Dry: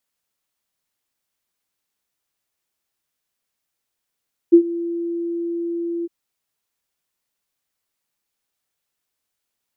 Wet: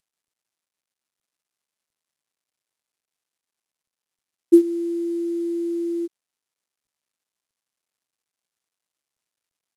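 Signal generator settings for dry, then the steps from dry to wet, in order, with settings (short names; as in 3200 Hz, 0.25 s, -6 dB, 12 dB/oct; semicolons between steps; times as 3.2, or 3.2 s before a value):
ADSR sine 340 Hz, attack 19 ms, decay 82 ms, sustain -18.5 dB, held 1.53 s, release 28 ms -3.5 dBFS
CVSD 64 kbps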